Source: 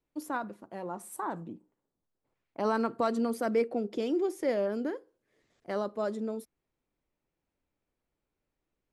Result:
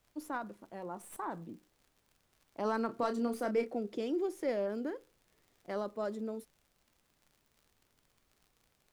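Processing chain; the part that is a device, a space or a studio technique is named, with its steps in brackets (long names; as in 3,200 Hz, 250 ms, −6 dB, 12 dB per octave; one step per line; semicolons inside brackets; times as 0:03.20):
record under a worn stylus (stylus tracing distortion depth 0.028 ms; surface crackle 72 per second −48 dBFS; pink noise bed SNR 36 dB)
0:02.86–0:03.77: double-tracking delay 29 ms −8 dB
level −4.5 dB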